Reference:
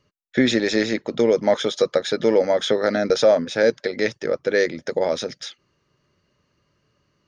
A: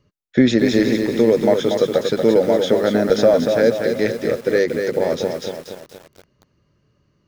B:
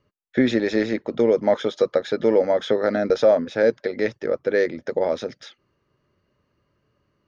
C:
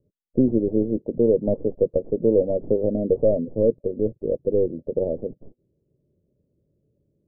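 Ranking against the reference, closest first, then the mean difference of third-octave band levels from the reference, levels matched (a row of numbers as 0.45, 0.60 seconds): B, A, C; 2.5, 7.0, 11.5 decibels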